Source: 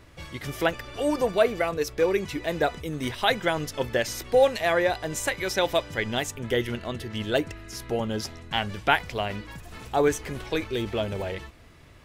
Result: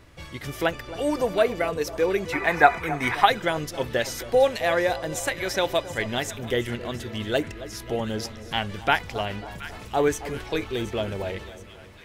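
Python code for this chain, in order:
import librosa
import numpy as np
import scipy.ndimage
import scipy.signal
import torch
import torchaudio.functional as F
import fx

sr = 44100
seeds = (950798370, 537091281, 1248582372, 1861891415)

y = fx.echo_split(x, sr, split_hz=1200.0, low_ms=270, high_ms=723, feedback_pct=52, wet_db=-14.0)
y = fx.spec_box(y, sr, start_s=2.33, length_s=0.93, low_hz=680.0, high_hz=2600.0, gain_db=12)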